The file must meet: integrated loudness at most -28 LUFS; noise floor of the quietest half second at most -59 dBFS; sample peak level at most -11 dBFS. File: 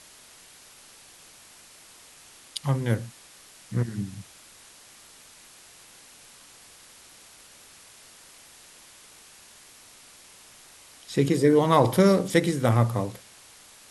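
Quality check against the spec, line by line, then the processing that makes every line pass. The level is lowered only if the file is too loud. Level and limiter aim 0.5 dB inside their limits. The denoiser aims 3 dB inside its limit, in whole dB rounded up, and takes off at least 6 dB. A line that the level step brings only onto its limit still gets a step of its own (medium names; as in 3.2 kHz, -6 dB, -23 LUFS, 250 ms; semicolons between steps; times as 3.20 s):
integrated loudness -24.0 LUFS: fail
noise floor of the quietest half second -51 dBFS: fail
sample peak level -6.0 dBFS: fail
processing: noise reduction 7 dB, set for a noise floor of -51 dBFS; trim -4.5 dB; peak limiter -11.5 dBFS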